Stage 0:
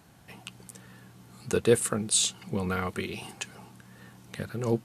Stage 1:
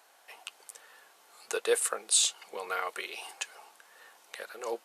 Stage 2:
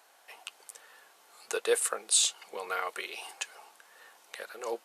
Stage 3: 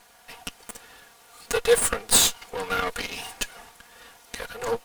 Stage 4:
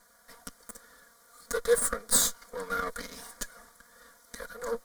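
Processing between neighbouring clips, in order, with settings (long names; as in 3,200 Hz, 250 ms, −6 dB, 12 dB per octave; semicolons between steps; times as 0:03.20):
high-pass filter 520 Hz 24 dB per octave
no processing that can be heard
lower of the sound and its delayed copy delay 4.2 ms; level +8.5 dB
phaser with its sweep stopped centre 540 Hz, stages 8; level −4 dB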